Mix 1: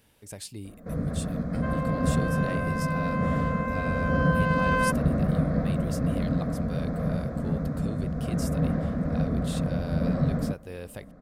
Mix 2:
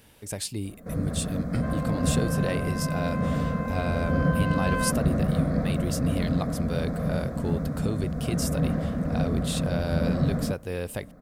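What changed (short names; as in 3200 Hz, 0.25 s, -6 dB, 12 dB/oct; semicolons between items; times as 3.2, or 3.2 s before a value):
speech +7.5 dB; first sound: remove air absorption 82 m; second sound -4.5 dB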